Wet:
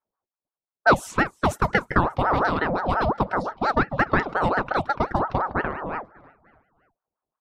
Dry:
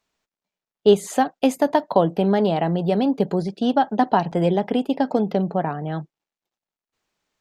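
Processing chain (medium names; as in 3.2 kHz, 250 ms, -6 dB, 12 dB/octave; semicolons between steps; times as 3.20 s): level-controlled noise filter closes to 340 Hz, open at -15.5 dBFS; frequency-shifting echo 297 ms, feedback 47%, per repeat +63 Hz, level -23 dB; ring modulator with a swept carrier 730 Hz, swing 55%, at 5.7 Hz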